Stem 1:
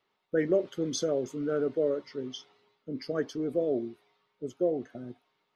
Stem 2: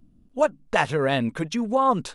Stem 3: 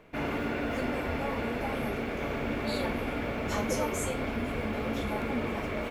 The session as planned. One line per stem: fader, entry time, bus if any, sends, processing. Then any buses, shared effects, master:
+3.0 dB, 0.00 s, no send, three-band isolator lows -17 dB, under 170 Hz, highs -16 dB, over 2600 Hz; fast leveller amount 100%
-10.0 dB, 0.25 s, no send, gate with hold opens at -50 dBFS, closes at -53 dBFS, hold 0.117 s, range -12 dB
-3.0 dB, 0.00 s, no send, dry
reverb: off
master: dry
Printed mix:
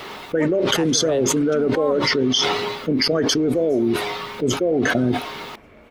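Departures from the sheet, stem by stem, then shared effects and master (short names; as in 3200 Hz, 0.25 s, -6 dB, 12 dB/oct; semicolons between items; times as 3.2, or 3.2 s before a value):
stem 1: missing three-band isolator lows -17 dB, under 170 Hz, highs -16 dB, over 2600 Hz; stem 2: entry 0.25 s -> 0.00 s; stem 3 -3.0 dB -> -14.5 dB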